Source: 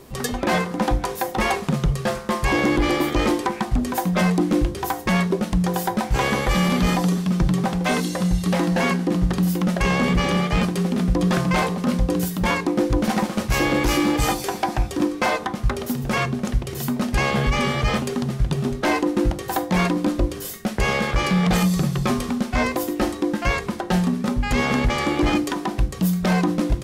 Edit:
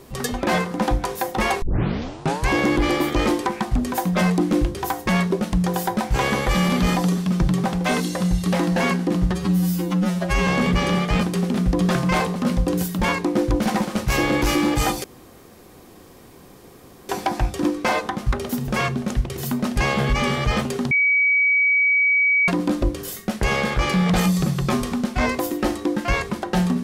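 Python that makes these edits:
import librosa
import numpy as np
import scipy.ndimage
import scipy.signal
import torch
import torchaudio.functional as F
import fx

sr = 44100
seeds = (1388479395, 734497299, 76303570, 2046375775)

y = fx.edit(x, sr, fx.tape_start(start_s=1.62, length_s=0.88),
    fx.stretch_span(start_s=9.31, length_s=0.58, factor=2.0),
    fx.insert_room_tone(at_s=14.46, length_s=2.05),
    fx.bleep(start_s=18.28, length_s=1.57, hz=2270.0, db=-14.5), tone=tone)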